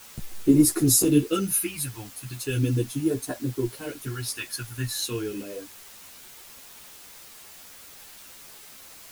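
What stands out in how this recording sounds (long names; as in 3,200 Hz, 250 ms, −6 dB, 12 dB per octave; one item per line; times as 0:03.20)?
phaser sweep stages 2, 0.38 Hz, lowest notch 380–2,600 Hz
a quantiser's noise floor 8 bits, dither triangular
a shimmering, thickened sound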